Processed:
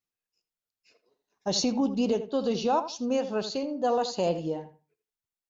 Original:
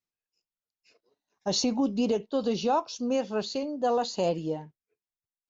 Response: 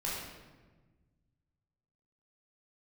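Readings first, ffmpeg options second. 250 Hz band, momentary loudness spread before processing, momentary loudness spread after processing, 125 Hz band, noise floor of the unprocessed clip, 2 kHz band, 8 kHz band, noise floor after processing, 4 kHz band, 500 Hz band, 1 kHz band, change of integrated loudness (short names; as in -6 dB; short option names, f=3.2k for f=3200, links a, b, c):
+0.5 dB, 6 LU, 6 LU, 0.0 dB, under -85 dBFS, 0.0 dB, n/a, under -85 dBFS, 0.0 dB, +0.5 dB, +0.5 dB, +0.5 dB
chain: -filter_complex "[0:a]asplit=2[a][b];[b]adelay=81,lowpass=f=2.3k:p=1,volume=-11dB,asplit=2[c][d];[d]adelay=81,lowpass=f=2.3k:p=1,volume=0.22,asplit=2[e][f];[f]adelay=81,lowpass=f=2.3k:p=1,volume=0.22[g];[a][c][e][g]amix=inputs=4:normalize=0"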